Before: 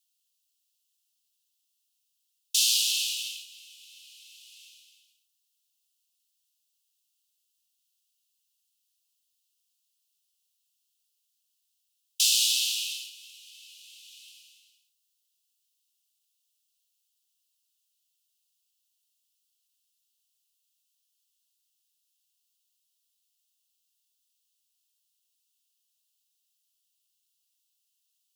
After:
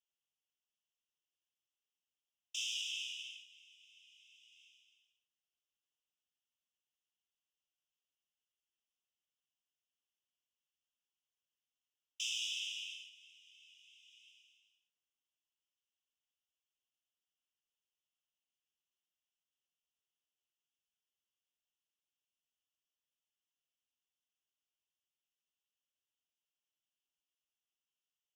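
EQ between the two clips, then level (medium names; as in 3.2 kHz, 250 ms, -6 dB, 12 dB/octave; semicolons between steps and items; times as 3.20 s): Butterworth band-stop 4.3 kHz, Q 2.1; distance through air 170 m; -5.0 dB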